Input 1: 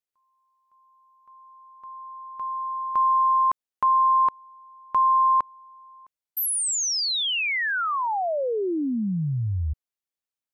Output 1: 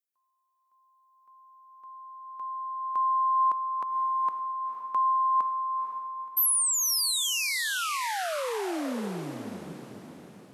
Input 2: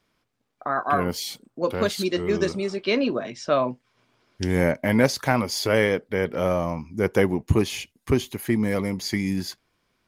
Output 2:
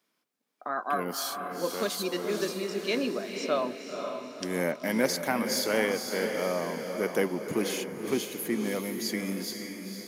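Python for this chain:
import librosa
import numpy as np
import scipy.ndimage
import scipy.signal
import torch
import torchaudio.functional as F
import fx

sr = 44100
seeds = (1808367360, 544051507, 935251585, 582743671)

y = scipy.signal.sosfilt(scipy.signal.butter(4, 190.0, 'highpass', fs=sr, output='sos'), x)
y = fx.high_shelf(y, sr, hz=7200.0, db=11.5)
y = fx.echo_diffused(y, sr, ms=502, feedback_pct=47, wet_db=-6.0)
y = y * librosa.db_to_amplitude(-7.0)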